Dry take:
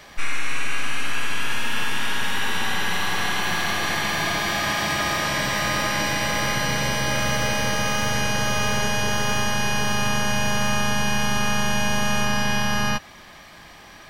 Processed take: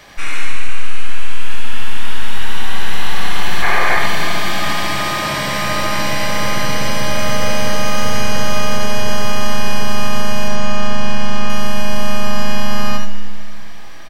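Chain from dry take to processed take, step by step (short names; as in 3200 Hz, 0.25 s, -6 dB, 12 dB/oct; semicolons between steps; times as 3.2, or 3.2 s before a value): 3.63–3.99 spectral gain 350–2500 Hz +10 dB; 10.48–11.5 air absorption 55 m; on a send: early reflections 21 ms -11.5 dB, 73 ms -7 dB; on the sum: digital reverb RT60 2.4 s, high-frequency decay 1×, pre-delay 45 ms, DRR 11.5 dB; maximiser +3.5 dB; gain -1 dB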